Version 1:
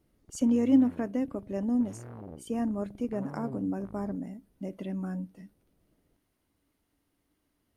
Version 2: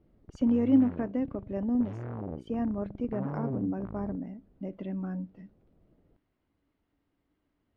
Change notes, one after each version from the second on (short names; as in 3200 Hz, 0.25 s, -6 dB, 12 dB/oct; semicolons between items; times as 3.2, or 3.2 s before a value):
background +7.0 dB; master: add air absorption 270 m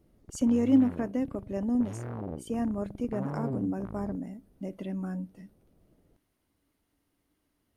master: remove air absorption 270 m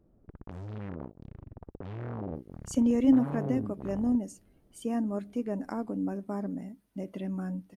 speech: entry +2.35 s